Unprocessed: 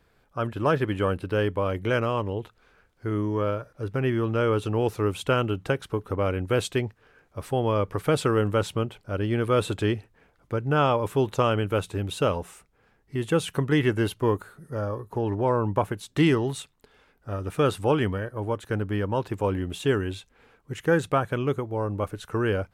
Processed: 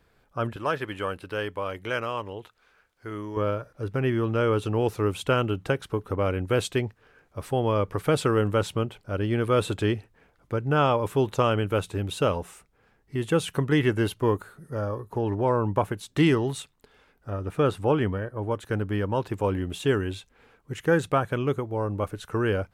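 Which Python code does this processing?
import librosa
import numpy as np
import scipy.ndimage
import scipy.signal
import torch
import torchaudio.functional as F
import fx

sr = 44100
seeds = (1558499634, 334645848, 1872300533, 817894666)

y = fx.low_shelf(x, sr, hz=480.0, db=-11.5, at=(0.56, 3.37))
y = fx.high_shelf(y, sr, hz=2800.0, db=-8.0, at=(17.3, 18.51))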